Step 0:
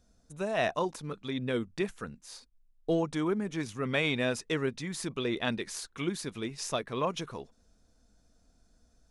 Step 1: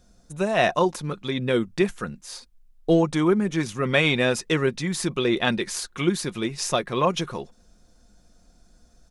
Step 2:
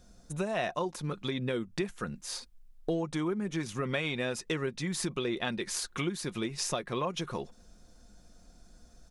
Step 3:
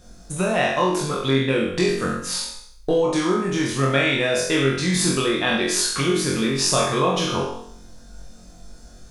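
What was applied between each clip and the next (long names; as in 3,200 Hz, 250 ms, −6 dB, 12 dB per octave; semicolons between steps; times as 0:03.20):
comb filter 5.6 ms, depth 32%; level +8.5 dB
downward compressor 4 to 1, threshold −31 dBFS, peak gain reduction 14 dB
peak hold with a decay on every bin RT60 0.61 s; flutter between parallel walls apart 3.8 metres, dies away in 0.49 s; level +7.5 dB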